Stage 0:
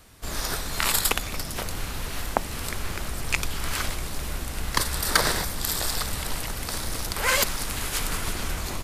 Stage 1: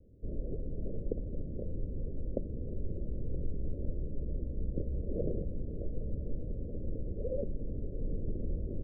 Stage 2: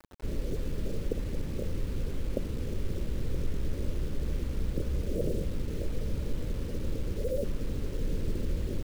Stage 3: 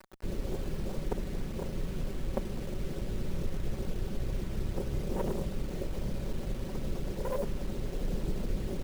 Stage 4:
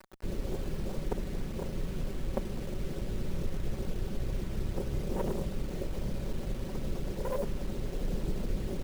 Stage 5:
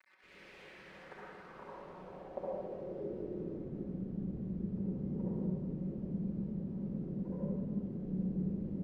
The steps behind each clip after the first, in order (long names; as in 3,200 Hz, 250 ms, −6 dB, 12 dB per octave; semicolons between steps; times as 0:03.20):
Butterworth low-pass 560 Hz 72 dB per octave; level −3.5 dB
in parallel at −2.5 dB: brickwall limiter −28.5 dBFS, peak gain reduction 9.5 dB; on the sum: bit reduction 8 bits
lower of the sound and its delayed copy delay 5.3 ms
no processing that can be heard
band-pass filter sweep 2,200 Hz → 210 Hz, 0:00.60–0:03.99; convolution reverb RT60 1.5 s, pre-delay 55 ms, DRR −6.5 dB; level −4 dB